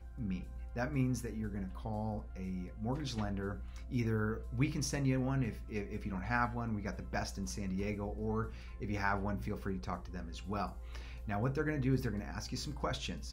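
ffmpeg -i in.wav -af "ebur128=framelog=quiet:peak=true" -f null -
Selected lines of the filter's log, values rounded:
Integrated loudness:
  I:         -38.0 LUFS
  Threshold: -48.0 LUFS
Loudness range:
  LRA:         3.2 LU
  Threshold: -57.9 LUFS
  LRA low:   -39.4 LUFS
  LRA high:  -36.2 LUFS
True peak:
  Peak:      -18.0 dBFS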